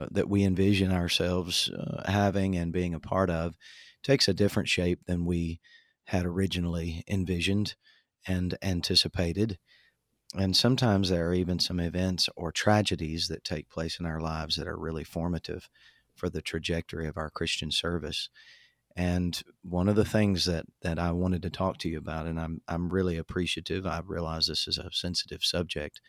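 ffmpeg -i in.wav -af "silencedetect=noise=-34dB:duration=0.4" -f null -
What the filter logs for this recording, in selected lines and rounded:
silence_start: 3.50
silence_end: 4.04 | silence_duration: 0.54
silence_start: 5.54
silence_end: 6.10 | silence_duration: 0.56
silence_start: 7.71
silence_end: 8.26 | silence_duration: 0.54
silence_start: 9.53
silence_end: 10.30 | silence_duration: 0.77
silence_start: 15.59
silence_end: 16.23 | silence_duration: 0.64
silence_start: 18.26
silence_end: 18.97 | silence_duration: 0.72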